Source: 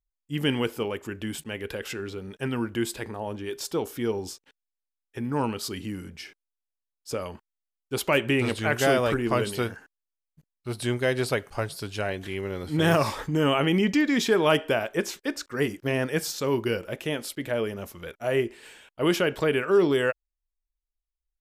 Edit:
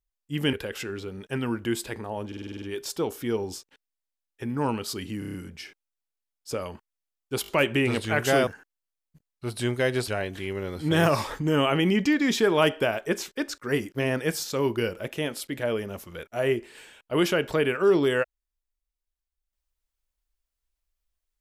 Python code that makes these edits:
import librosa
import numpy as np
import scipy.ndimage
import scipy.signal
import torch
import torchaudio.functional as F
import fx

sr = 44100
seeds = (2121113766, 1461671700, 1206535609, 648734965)

y = fx.edit(x, sr, fx.cut(start_s=0.53, length_s=1.1),
    fx.stutter(start_s=3.37, slice_s=0.05, count=8),
    fx.stutter(start_s=5.94, slice_s=0.03, count=6),
    fx.stutter(start_s=8.02, slice_s=0.02, count=4),
    fx.cut(start_s=9.01, length_s=0.69),
    fx.cut(start_s=11.31, length_s=0.65), tone=tone)